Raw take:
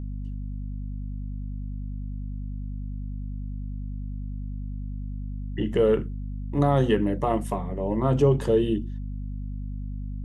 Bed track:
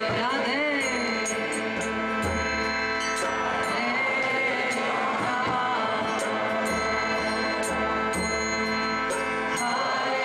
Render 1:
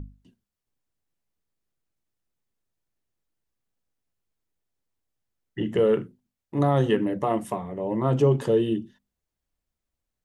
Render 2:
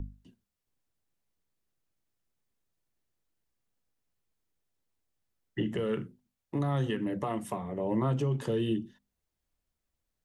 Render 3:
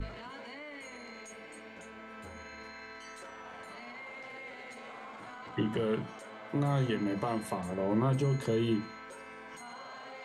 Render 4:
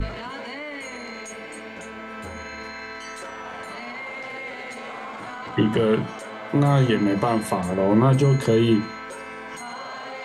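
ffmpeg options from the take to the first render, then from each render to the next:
-af "bandreject=f=50:t=h:w=6,bandreject=f=100:t=h:w=6,bandreject=f=150:t=h:w=6,bandreject=f=200:t=h:w=6,bandreject=f=250:t=h:w=6"
-filter_complex "[0:a]acrossover=split=260|1100|3400[a][b][c][d];[b]acompressor=threshold=-30dB:ratio=6[e];[a][e][c][d]amix=inputs=4:normalize=0,alimiter=limit=-21dB:level=0:latency=1:release=460"
-filter_complex "[1:a]volume=-20.5dB[a];[0:a][a]amix=inputs=2:normalize=0"
-af "volume=11.5dB"

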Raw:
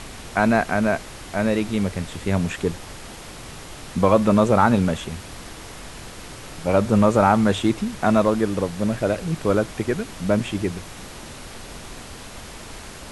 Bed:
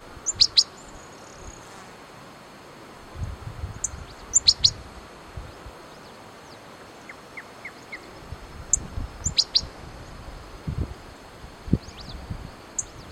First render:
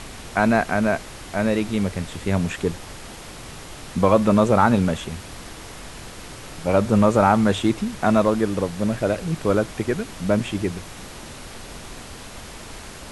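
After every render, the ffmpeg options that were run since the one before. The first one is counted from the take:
-af anull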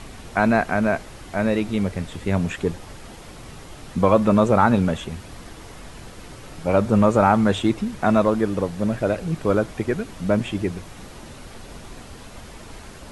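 -af "afftdn=nr=6:nf=-39"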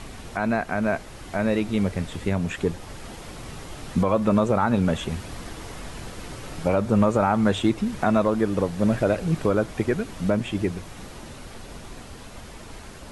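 -af "alimiter=limit=-12.5dB:level=0:latency=1:release=362,dynaudnorm=f=300:g=21:m=3dB"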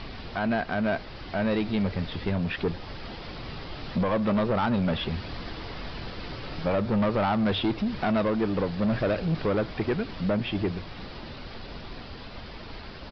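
-af "crystalizer=i=1.5:c=0,aresample=11025,asoftclip=type=tanh:threshold=-20dB,aresample=44100"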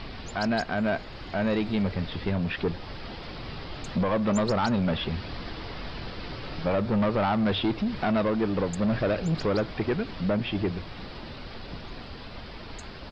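-filter_complex "[1:a]volume=-22dB[a];[0:a][a]amix=inputs=2:normalize=0"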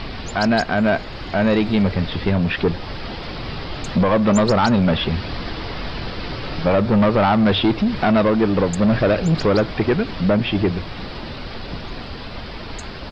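-af "volume=9dB"

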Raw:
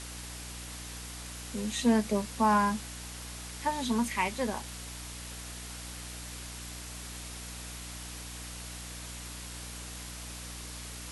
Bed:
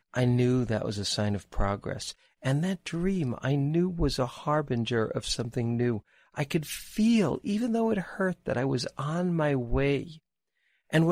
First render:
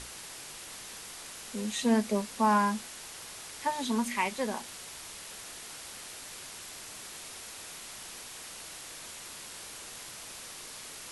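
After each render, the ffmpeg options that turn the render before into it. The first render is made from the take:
-af "bandreject=f=60:t=h:w=6,bandreject=f=120:t=h:w=6,bandreject=f=180:t=h:w=6,bandreject=f=240:t=h:w=6,bandreject=f=300:t=h:w=6"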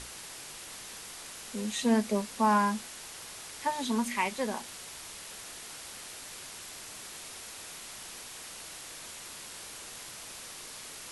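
-af anull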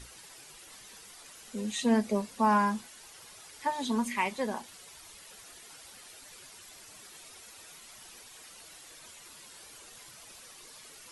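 -af "afftdn=nr=10:nf=-45"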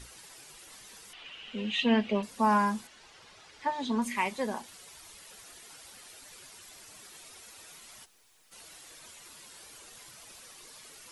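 -filter_complex "[0:a]asettb=1/sr,asplit=3[a][b][c];[a]atrim=end=1.134[d];[b]atrim=start=1.13:end=2.23,asetpts=PTS-STARTPTS,afade=t=in:d=0.004:c=qsin,afade=t=out:st=1.096:d=0.004:c=qsin,lowpass=f=2.9k:t=q:w=6.2[e];[c]atrim=start=2.226[f];[d][e]acrossfade=d=0.004:c1=hsin:c2=qsin[g];[g][f]acrossfade=d=0.004:c1=qsin:c2=hsin,asettb=1/sr,asplit=3[h][i][j];[h]atrim=end=2.874[k];[i]atrim=start=2.87:end=4.02,asetpts=PTS-STARTPTS,afade=t=in:d=0.004:c=qsin,afade=t=out:st=1.146:d=0.004:c=qsin,lowpass=4.6k[l];[j]atrim=start=4.016[m];[k][l]acrossfade=d=0.004:c1=hsin:c2=qsin[n];[n][m]acrossfade=d=0.004:c1=qsin:c2=hsin,asplit=3[o][p][q];[o]afade=t=out:st=8.04:d=0.02[r];[p]aeval=exprs='(tanh(1580*val(0)+0.8)-tanh(0.8))/1580':c=same,afade=t=in:st=8.04:d=0.02,afade=t=out:st=8.51:d=0.02[s];[q]afade=t=in:st=8.51:d=0.02[t];[r][s][t]amix=inputs=3:normalize=0"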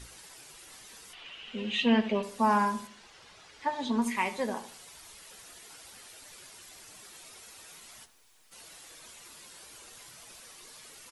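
-filter_complex "[0:a]asplit=2[a][b];[b]adelay=17,volume=-12.5dB[c];[a][c]amix=inputs=2:normalize=0,asplit=2[d][e];[e]adelay=77,lowpass=f=2k:p=1,volume=-12dB,asplit=2[f][g];[g]adelay=77,lowpass=f=2k:p=1,volume=0.38,asplit=2[h][i];[i]adelay=77,lowpass=f=2k:p=1,volume=0.38,asplit=2[j][k];[k]adelay=77,lowpass=f=2k:p=1,volume=0.38[l];[d][f][h][j][l]amix=inputs=5:normalize=0"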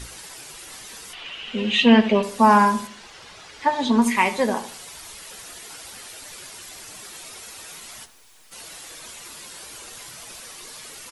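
-af "volume=10.5dB"

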